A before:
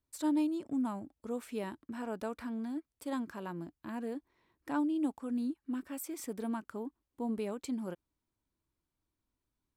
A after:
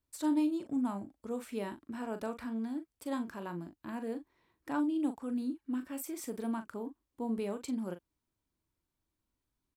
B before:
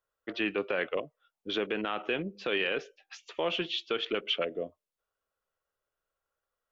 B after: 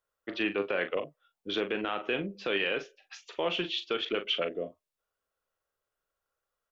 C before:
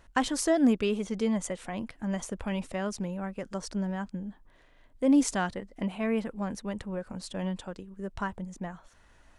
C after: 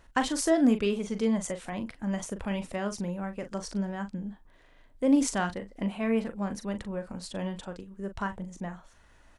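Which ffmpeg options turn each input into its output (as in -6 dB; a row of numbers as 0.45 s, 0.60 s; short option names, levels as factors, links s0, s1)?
-filter_complex "[0:a]asplit=2[s0][s1];[s1]adelay=40,volume=0.335[s2];[s0][s2]amix=inputs=2:normalize=0"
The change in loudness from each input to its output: +0.5 LU, +0.5 LU, +0.5 LU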